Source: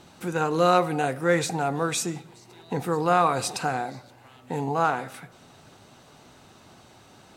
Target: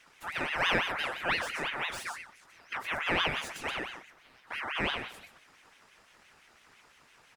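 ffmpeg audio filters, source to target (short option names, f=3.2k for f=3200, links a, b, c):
-filter_complex "[0:a]aecho=1:1:125:0.355,acrossover=split=170|460|2700[a][b][c][d];[d]asoftclip=type=tanh:threshold=-34dB[e];[a][b][c][e]amix=inputs=4:normalize=0,aeval=exprs='val(0)*sin(2*PI*1700*n/s+1700*0.4/5.9*sin(2*PI*5.9*n/s))':c=same,volume=-6dB"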